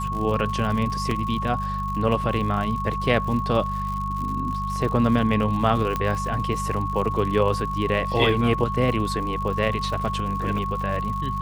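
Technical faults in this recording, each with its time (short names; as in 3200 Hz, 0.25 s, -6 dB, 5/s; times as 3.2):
crackle 110/s -31 dBFS
hum 50 Hz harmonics 4 -30 dBFS
tone 1100 Hz -27 dBFS
1.11 gap 3.1 ms
5.96 pop -12 dBFS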